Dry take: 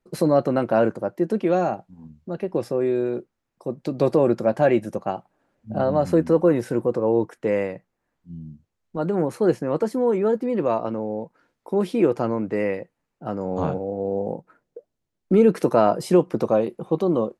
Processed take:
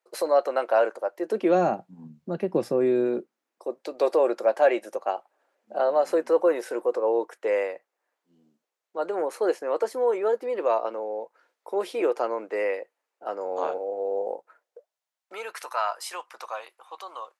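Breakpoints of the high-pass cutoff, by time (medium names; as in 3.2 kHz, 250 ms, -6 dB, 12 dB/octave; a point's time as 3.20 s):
high-pass 24 dB/octave
1.16 s 500 Hz
1.68 s 150 Hz
3.01 s 150 Hz
3.79 s 440 Hz
14.28 s 440 Hz
15.69 s 970 Hz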